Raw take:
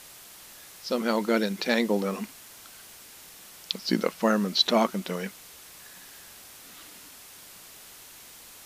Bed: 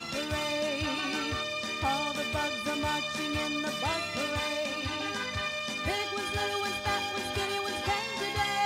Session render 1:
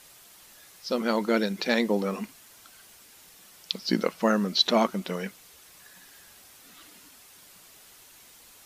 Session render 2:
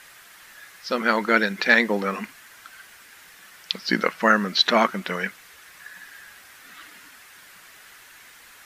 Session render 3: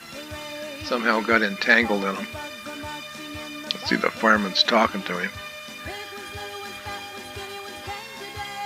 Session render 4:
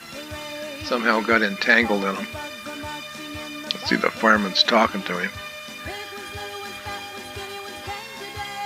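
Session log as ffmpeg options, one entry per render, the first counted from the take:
ffmpeg -i in.wav -af "afftdn=noise_reduction=6:noise_floor=-49" out.wav
ffmpeg -i in.wav -af "equalizer=frequency=1700:width_type=o:width=1.3:gain=14.5" out.wav
ffmpeg -i in.wav -i bed.wav -filter_complex "[1:a]volume=-4dB[link_01];[0:a][link_01]amix=inputs=2:normalize=0" out.wav
ffmpeg -i in.wav -af "volume=1.5dB,alimiter=limit=-2dB:level=0:latency=1" out.wav

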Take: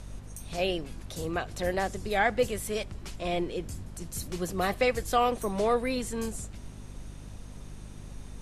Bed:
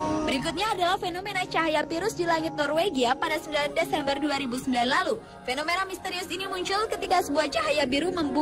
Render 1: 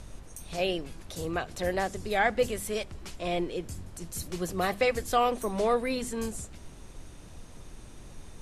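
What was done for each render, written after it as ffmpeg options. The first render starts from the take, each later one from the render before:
ffmpeg -i in.wav -af "bandreject=frequency=50:width_type=h:width=4,bandreject=frequency=100:width_type=h:width=4,bandreject=frequency=150:width_type=h:width=4,bandreject=frequency=200:width_type=h:width=4,bandreject=frequency=250:width_type=h:width=4" out.wav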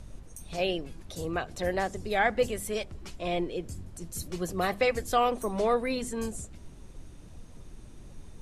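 ffmpeg -i in.wav -af "afftdn=noise_reduction=6:noise_floor=-48" out.wav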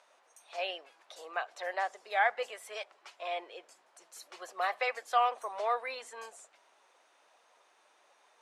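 ffmpeg -i in.wav -af "highpass=frequency=690:width=0.5412,highpass=frequency=690:width=1.3066,aemphasis=mode=reproduction:type=75fm" out.wav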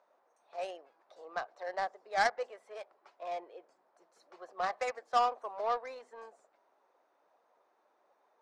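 ffmpeg -i in.wav -af "adynamicsmooth=sensitivity=1:basefreq=1100,aexciter=amount=3.8:drive=5.9:freq=4200" out.wav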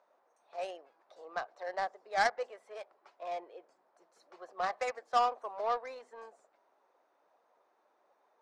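ffmpeg -i in.wav -af anull out.wav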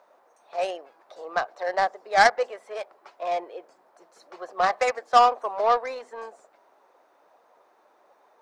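ffmpeg -i in.wav -af "volume=11.5dB" out.wav

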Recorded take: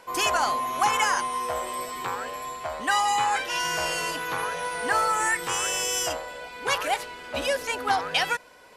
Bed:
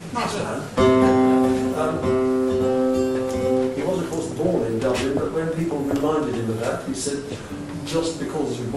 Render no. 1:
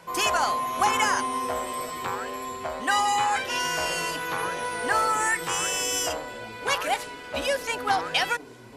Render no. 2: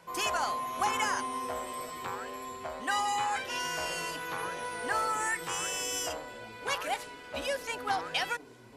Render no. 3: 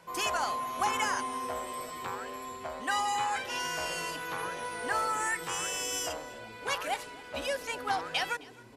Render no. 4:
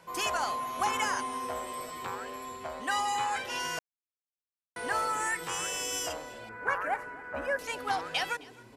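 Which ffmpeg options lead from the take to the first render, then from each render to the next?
ffmpeg -i in.wav -i bed.wav -filter_complex "[1:a]volume=-21.5dB[link_01];[0:a][link_01]amix=inputs=2:normalize=0" out.wav
ffmpeg -i in.wav -af "volume=-7dB" out.wav
ffmpeg -i in.wav -af "aecho=1:1:264:0.0794" out.wav
ffmpeg -i in.wav -filter_complex "[0:a]asettb=1/sr,asplit=3[link_01][link_02][link_03];[link_01]atrim=end=6.494[link_04];[link_02]atrim=start=6.49:end=7.59,asetpts=PTS-STARTPTS,afade=type=in:duration=0.004:curve=qsin,afade=type=out:start_time=1.096:duration=0.004:curve=qsin,highshelf=frequency=2400:width_type=q:width=3:gain=-14[link_05];[link_03]atrim=start=7.586[link_06];[link_04][link_05]acrossfade=duration=0.004:curve1=hsin:curve2=qsin[link_07];[link_07][link_06]acrossfade=duration=0.004:curve1=qsin:curve2=hsin,asplit=3[link_08][link_09][link_10];[link_08]atrim=end=3.79,asetpts=PTS-STARTPTS,afade=type=out:start_time=3.786:duration=0.004:curve=hsin[link_11];[link_09]atrim=start=3.79:end=4.76,asetpts=PTS-STARTPTS,volume=0[link_12];[link_10]atrim=start=4.76,asetpts=PTS-STARTPTS,afade=type=in:duration=0.004:curve=hsin[link_13];[link_11][link_12][link_13]concat=n=3:v=0:a=1" out.wav

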